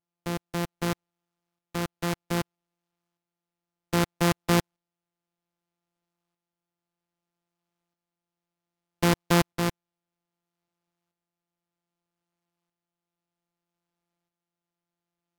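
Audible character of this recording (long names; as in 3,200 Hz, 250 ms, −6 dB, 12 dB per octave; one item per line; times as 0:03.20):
a buzz of ramps at a fixed pitch in blocks of 256 samples
tremolo saw up 0.63 Hz, depth 55%
AAC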